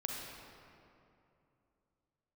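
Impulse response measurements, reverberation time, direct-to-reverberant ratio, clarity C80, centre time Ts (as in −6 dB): 2.8 s, −1.0 dB, 1.5 dB, 118 ms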